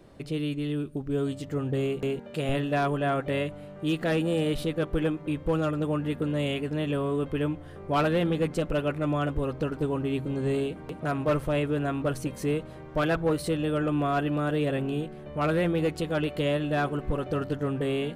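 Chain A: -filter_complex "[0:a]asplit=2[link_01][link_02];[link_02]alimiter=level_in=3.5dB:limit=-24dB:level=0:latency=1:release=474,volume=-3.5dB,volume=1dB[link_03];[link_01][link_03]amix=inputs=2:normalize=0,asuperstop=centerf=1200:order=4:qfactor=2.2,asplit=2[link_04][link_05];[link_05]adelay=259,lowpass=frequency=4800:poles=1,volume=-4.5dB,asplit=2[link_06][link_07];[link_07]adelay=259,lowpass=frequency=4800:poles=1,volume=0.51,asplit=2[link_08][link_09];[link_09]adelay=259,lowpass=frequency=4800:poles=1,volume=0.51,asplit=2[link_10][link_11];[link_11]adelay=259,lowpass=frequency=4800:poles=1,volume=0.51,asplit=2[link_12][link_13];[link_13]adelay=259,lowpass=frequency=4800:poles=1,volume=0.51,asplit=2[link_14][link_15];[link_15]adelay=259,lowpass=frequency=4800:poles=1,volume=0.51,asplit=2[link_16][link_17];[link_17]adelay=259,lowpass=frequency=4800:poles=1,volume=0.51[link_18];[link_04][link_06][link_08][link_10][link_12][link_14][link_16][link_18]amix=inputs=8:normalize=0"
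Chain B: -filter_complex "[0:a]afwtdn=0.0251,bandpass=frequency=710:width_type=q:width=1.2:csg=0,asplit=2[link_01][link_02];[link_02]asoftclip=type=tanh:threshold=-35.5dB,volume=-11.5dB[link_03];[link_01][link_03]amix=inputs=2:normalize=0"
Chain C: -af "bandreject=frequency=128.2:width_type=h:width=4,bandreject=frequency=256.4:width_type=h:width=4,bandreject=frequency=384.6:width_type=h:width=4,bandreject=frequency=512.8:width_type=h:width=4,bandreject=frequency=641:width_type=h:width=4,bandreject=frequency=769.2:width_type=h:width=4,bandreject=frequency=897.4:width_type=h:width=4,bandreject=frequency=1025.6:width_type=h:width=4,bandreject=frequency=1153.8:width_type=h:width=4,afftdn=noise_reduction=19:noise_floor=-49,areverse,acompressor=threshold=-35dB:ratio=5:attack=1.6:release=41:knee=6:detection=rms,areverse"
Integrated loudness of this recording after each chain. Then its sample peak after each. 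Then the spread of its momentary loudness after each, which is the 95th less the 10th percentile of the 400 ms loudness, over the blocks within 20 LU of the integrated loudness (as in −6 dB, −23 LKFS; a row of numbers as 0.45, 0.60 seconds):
−24.0, −33.0, −38.5 LKFS; −10.5, −17.0, −28.5 dBFS; 4, 8, 3 LU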